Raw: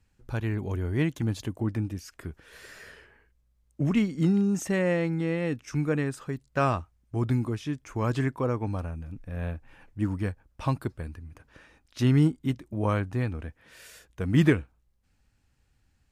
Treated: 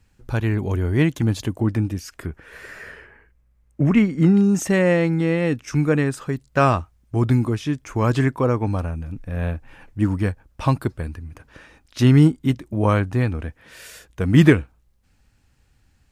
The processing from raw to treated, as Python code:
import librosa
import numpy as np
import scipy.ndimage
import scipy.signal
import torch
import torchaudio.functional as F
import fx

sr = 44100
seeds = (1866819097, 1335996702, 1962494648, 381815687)

y = fx.high_shelf_res(x, sr, hz=2800.0, db=-6.5, q=1.5, at=(2.26, 4.37))
y = y * librosa.db_to_amplitude(8.0)